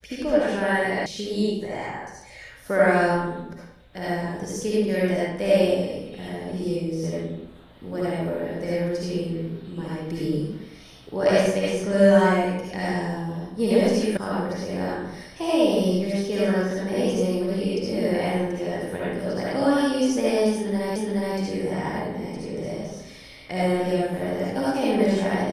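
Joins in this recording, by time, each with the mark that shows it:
1.06 s: sound stops dead
14.17 s: sound stops dead
20.96 s: repeat of the last 0.42 s

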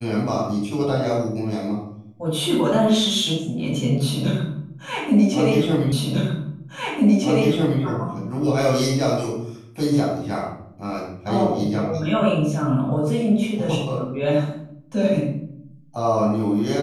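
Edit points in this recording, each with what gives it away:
5.92 s: repeat of the last 1.9 s

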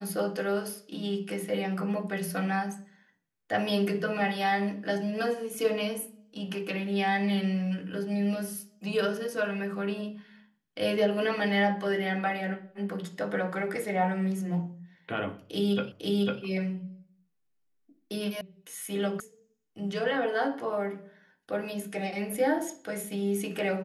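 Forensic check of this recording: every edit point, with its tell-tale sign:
15.92 s: repeat of the last 0.5 s
18.41 s: sound stops dead
19.20 s: sound stops dead

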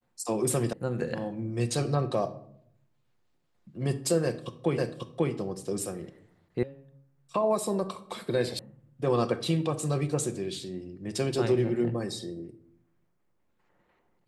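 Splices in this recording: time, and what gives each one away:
0.73 s: sound stops dead
4.78 s: repeat of the last 0.54 s
6.63 s: sound stops dead
8.59 s: sound stops dead

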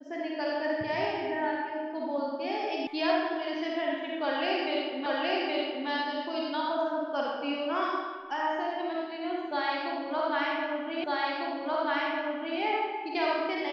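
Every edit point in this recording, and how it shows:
2.87 s: sound stops dead
5.06 s: repeat of the last 0.82 s
11.04 s: repeat of the last 1.55 s

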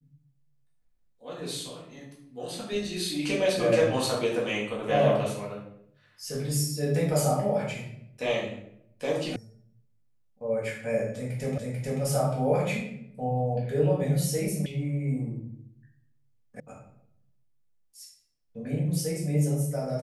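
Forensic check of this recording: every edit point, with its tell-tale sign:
9.36 s: sound stops dead
11.58 s: repeat of the last 0.44 s
14.66 s: sound stops dead
16.60 s: sound stops dead

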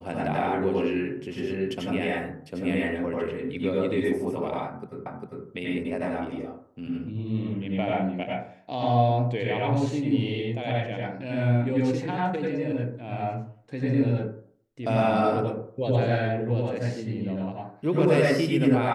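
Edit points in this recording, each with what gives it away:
5.06 s: repeat of the last 0.4 s

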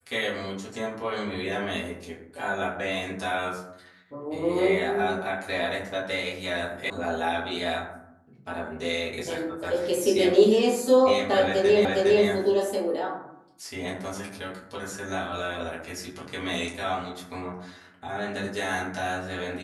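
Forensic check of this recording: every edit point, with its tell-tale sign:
6.90 s: sound stops dead
11.85 s: repeat of the last 0.41 s

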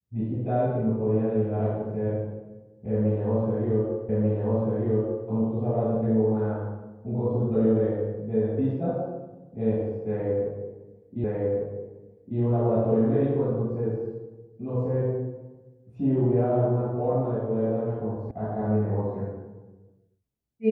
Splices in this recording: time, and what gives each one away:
4.09 s: repeat of the last 1.19 s
11.24 s: repeat of the last 1.15 s
18.31 s: sound stops dead

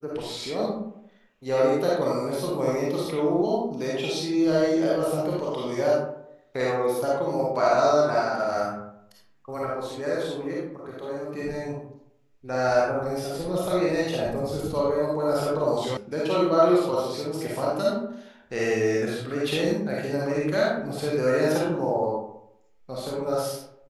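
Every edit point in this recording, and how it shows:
15.97 s: sound stops dead

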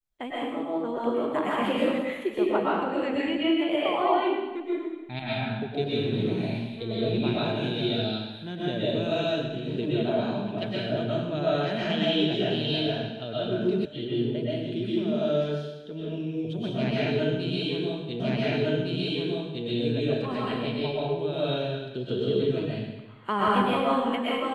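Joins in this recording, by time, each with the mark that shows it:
13.85 s: sound stops dead
18.20 s: repeat of the last 1.46 s

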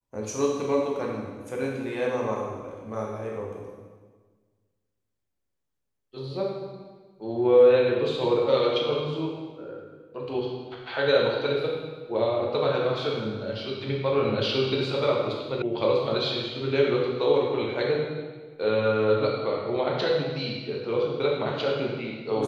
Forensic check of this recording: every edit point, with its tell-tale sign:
15.62 s: sound stops dead

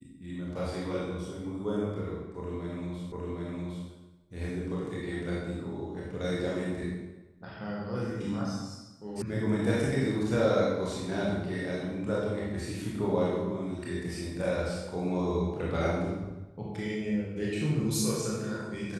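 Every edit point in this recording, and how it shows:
3.12 s: repeat of the last 0.76 s
9.22 s: sound stops dead

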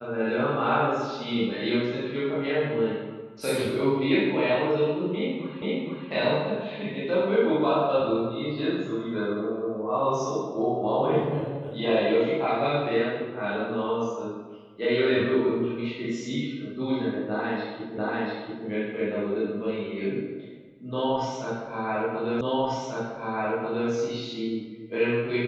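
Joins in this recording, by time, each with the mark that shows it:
5.62 s: repeat of the last 0.47 s
17.98 s: repeat of the last 0.69 s
22.41 s: repeat of the last 1.49 s

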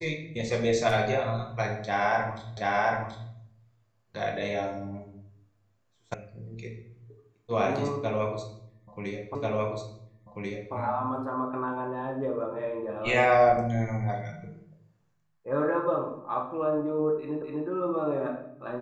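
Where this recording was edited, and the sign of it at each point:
2.57 s: repeat of the last 0.73 s
6.14 s: sound stops dead
9.35 s: repeat of the last 1.39 s
17.42 s: repeat of the last 0.25 s

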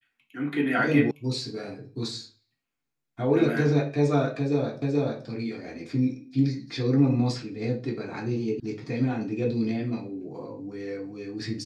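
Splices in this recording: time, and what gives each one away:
1.11 s: sound stops dead
4.82 s: repeat of the last 0.43 s
8.60 s: sound stops dead

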